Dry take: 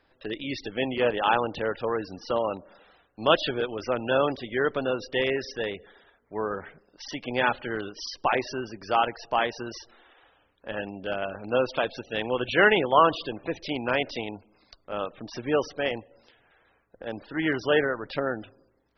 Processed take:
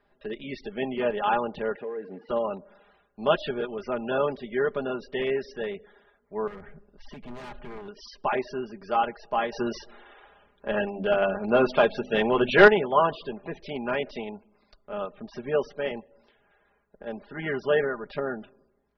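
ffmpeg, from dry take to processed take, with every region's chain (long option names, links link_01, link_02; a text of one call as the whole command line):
ffmpeg -i in.wav -filter_complex "[0:a]asettb=1/sr,asplit=3[link_01][link_02][link_03];[link_01]atrim=end=1.754[link_04];[link_02]atrim=start=1.75:end=2.29,asetpts=PTS-STARTPTS,afade=type=in:duration=0.004:curve=qsin,afade=type=out:start_time=0.536:duration=0.004:curve=qsin,acompressor=threshold=-33dB:ratio=20:attack=3.2:release=140:knee=1:detection=peak,acrusher=bits=4:mode=log:mix=0:aa=0.000001,highpass=170,equalizer=frequency=300:width_type=q:width=4:gain=6,equalizer=frequency=460:width_type=q:width=4:gain=8,equalizer=frequency=1300:width_type=q:width=4:gain=-9,equalizer=frequency=1900:width_type=q:width=4:gain=8,lowpass=frequency=2700:width=0.5412,lowpass=frequency=2700:width=1.3066[link_05];[link_03]atrim=start=2.286[link_06];[link_04][link_05]acrossfade=duration=0.004:curve1=hsin:curve2=qsin[link_07];[link_07][link_06]acrossfade=duration=0.004:curve1=qsin:curve2=hsin,asettb=1/sr,asplit=3[link_08][link_09][link_10];[link_08]atrim=end=6.474[link_11];[link_09]atrim=start=6.47:end=7.88,asetpts=PTS-STARTPTS,afade=type=in:duration=0.004:curve=qsin,afade=type=out:start_time=1.406:duration=0.004:curve=qsin,aemphasis=mode=reproduction:type=bsi,acompressor=threshold=-43dB:ratio=1.5:attack=3.2:release=140:knee=1:detection=peak,aeval=exprs='0.0224*(abs(mod(val(0)/0.0224+3,4)-2)-1)':channel_layout=same[link_12];[link_10]atrim=start=7.876[link_13];[link_11][link_12]acrossfade=duration=0.004:curve1=hsin:curve2=qsin[link_14];[link_14][link_13]acrossfade=duration=0.004:curve1=qsin:curve2=hsin,asettb=1/sr,asplit=3[link_15][link_16][link_17];[link_15]atrim=end=9.524[link_18];[link_16]atrim=start=9.52:end=12.68,asetpts=PTS-STARTPTS,afade=type=in:duration=0.004:curve=qsin,afade=type=out:start_time=3.156:duration=0.004:curve=qsin,bandreject=frequency=50:width_type=h:width=6,bandreject=frequency=100:width_type=h:width=6,bandreject=frequency=150:width_type=h:width=6,bandreject=frequency=200:width_type=h:width=6,bandreject=frequency=250:width_type=h:width=6,bandreject=frequency=300:width_type=h:width=6,aeval=exprs='0.562*sin(PI/2*1.78*val(0)/0.562)':channel_layout=same[link_19];[link_17]atrim=start=12.676[link_20];[link_18][link_19]acrossfade=duration=0.004:curve1=hsin:curve2=qsin[link_21];[link_21][link_20]acrossfade=duration=0.004:curve1=qsin:curve2=hsin,lowpass=frequency=1600:poles=1,aecho=1:1:4.9:0.73,volume=-2.5dB" out.wav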